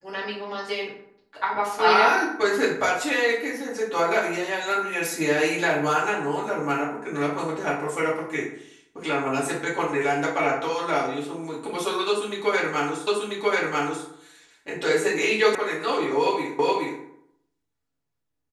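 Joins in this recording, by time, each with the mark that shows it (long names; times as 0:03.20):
0:13.07: the same again, the last 0.99 s
0:15.55: cut off before it has died away
0:16.59: the same again, the last 0.42 s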